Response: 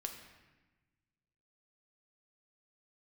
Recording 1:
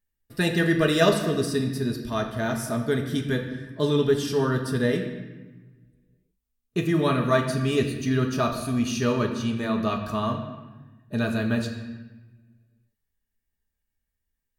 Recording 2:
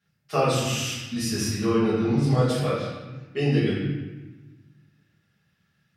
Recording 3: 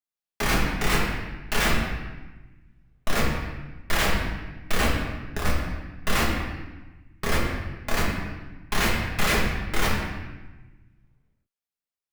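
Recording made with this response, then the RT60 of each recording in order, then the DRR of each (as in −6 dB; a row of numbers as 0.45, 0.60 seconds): 1; 1.2, 1.1, 1.1 seconds; 3.0, −12.5, −5.0 decibels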